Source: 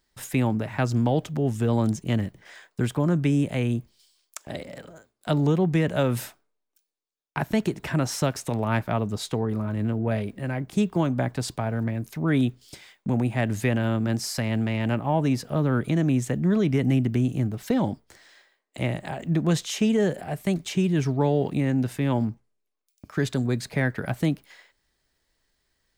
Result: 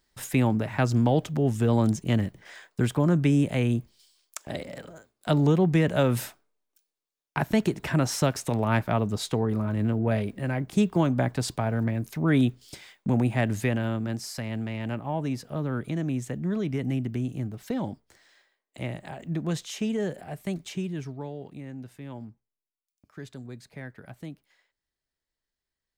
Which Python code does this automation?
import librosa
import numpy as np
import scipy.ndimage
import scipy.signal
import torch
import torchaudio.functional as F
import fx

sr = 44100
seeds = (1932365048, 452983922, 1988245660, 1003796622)

y = fx.gain(x, sr, db=fx.line((13.33, 0.5), (14.24, -6.5), (20.68, -6.5), (21.36, -16.0)))